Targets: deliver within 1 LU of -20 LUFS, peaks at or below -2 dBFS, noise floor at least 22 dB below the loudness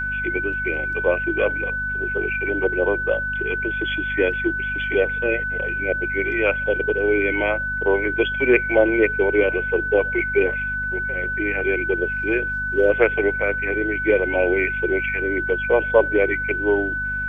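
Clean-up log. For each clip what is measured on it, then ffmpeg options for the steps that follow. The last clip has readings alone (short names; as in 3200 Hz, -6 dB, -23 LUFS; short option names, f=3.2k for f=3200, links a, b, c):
hum 50 Hz; harmonics up to 250 Hz; hum level -31 dBFS; steady tone 1500 Hz; tone level -23 dBFS; loudness -20.5 LUFS; peak -3.5 dBFS; loudness target -20.0 LUFS
-> -af "bandreject=f=50:t=h:w=4,bandreject=f=100:t=h:w=4,bandreject=f=150:t=h:w=4,bandreject=f=200:t=h:w=4,bandreject=f=250:t=h:w=4"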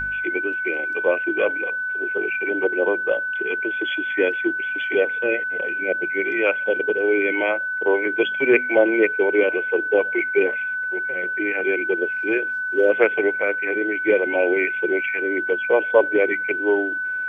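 hum none; steady tone 1500 Hz; tone level -23 dBFS
-> -af "bandreject=f=1.5k:w=30"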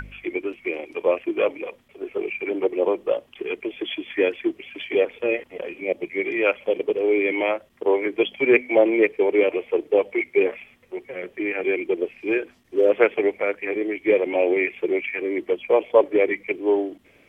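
steady tone none; loudness -23.0 LUFS; peak -4.0 dBFS; loudness target -20.0 LUFS
-> -af "volume=3dB,alimiter=limit=-2dB:level=0:latency=1"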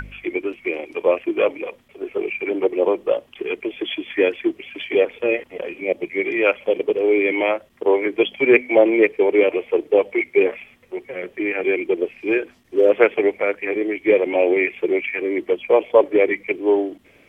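loudness -20.0 LUFS; peak -2.0 dBFS; noise floor -53 dBFS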